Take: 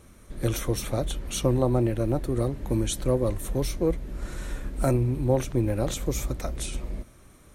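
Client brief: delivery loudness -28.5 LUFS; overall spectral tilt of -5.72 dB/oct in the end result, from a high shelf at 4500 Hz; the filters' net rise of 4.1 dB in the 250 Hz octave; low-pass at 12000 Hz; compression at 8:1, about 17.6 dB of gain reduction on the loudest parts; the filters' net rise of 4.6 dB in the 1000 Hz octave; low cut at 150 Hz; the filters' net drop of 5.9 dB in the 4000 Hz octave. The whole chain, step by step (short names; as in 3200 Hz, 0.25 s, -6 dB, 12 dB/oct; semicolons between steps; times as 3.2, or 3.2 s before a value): HPF 150 Hz; LPF 12000 Hz; bell 250 Hz +5.5 dB; bell 1000 Hz +6.5 dB; bell 4000 Hz -3.5 dB; high shelf 4500 Hz -9 dB; compressor 8:1, threshold -35 dBFS; gain +11.5 dB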